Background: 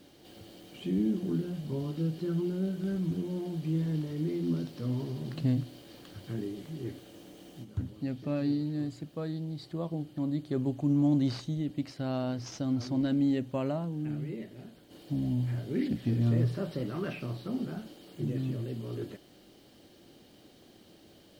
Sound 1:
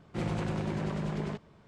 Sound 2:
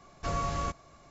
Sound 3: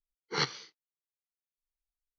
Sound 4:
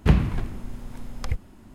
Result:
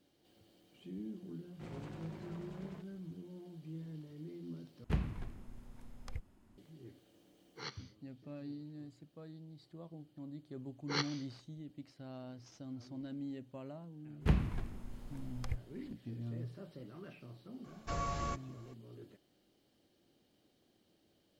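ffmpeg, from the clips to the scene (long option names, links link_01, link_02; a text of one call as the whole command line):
ffmpeg -i bed.wav -i cue0.wav -i cue1.wav -i cue2.wav -i cue3.wav -filter_complex "[4:a]asplit=2[link_01][link_02];[3:a]asplit=2[link_03][link_04];[0:a]volume=-16dB,asplit=2[link_05][link_06];[link_05]atrim=end=4.844[link_07];[link_01]atrim=end=1.74,asetpts=PTS-STARTPTS,volume=-16.5dB[link_08];[link_06]atrim=start=6.576[link_09];[1:a]atrim=end=1.67,asetpts=PTS-STARTPTS,volume=-16dB,afade=type=in:duration=0.004:curve=hsin,afade=type=out:start_time=1.666:duration=0.004:curve=hsin,adelay=1450[link_10];[link_03]atrim=end=2.18,asetpts=PTS-STARTPTS,volume=-15.5dB,afade=type=in:duration=0.004:curve=hsin,afade=type=out:start_time=2.176:duration=0.004:curve=hsin,adelay=7250[link_11];[link_04]atrim=end=2.18,asetpts=PTS-STARTPTS,volume=-6dB,afade=type=in:duration=0.004:curve=hsin,afade=type=out:start_time=2.176:duration=0.004:curve=hsin,adelay=10570[link_12];[link_02]atrim=end=1.74,asetpts=PTS-STARTPTS,volume=-12dB,afade=type=in:duration=0.02,afade=type=out:start_time=1.72:duration=0.02,adelay=14200[link_13];[2:a]atrim=end=1.1,asetpts=PTS-STARTPTS,volume=-6dB,afade=type=in:duration=0.004:curve=hsin,afade=type=out:start_time=1.096:duration=0.004:curve=hsin,adelay=777924S[link_14];[link_07][link_08]acrossfade=duration=0.004:curve1=hsin:curve2=hsin[link_15];[link_15][link_09]acrossfade=duration=0.004:curve1=hsin:curve2=hsin[link_16];[link_16][link_10][link_11][link_12][link_13][link_14]amix=inputs=6:normalize=0" out.wav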